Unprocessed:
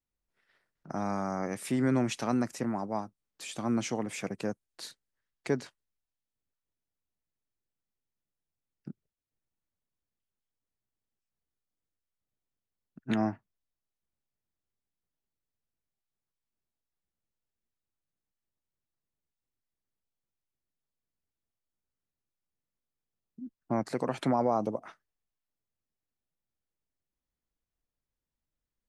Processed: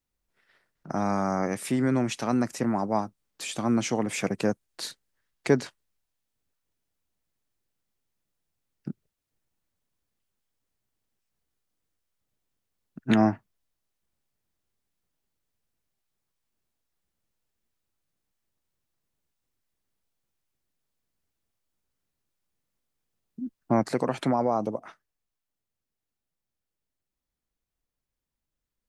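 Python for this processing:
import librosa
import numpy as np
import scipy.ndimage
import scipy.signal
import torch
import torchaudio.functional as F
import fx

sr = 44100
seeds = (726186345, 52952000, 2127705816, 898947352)

y = fx.rider(x, sr, range_db=3, speed_s=0.5)
y = y * librosa.db_to_amplitude(5.0)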